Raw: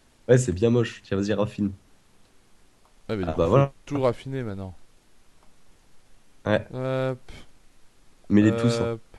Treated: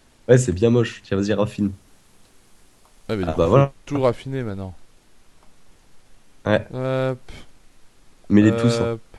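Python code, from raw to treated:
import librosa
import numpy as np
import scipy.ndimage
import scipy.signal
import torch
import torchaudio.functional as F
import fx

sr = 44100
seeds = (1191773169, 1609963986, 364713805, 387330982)

y = fx.high_shelf(x, sr, hz=7200.0, db=7.0, at=(1.46, 3.45))
y = y * librosa.db_to_amplitude(4.0)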